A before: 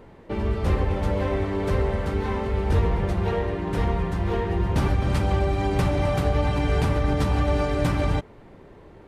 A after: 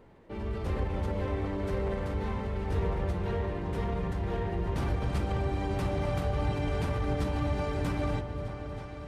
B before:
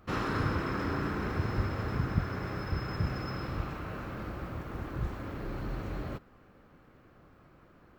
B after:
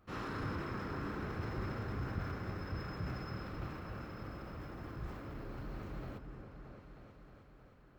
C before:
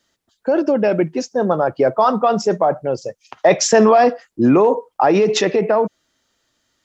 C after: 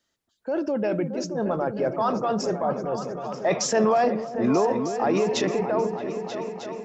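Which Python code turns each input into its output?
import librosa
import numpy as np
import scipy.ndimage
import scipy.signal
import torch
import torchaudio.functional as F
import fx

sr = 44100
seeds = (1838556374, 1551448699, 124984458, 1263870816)

p1 = fx.transient(x, sr, attack_db=-3, sustain_db=4)
p2 = p1 + fx.echo_opening(p1, sr, ms=312, hz=400, octaves=2, feedback_pct=70, wet_db=-6, dry=0)
y = F.gain(torch.from_numpy(p2), -9.0).numpy()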